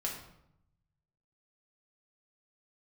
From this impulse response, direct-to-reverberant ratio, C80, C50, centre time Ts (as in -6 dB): -2.5 dB, 8.0 dB, 5.0 dB, 33 ms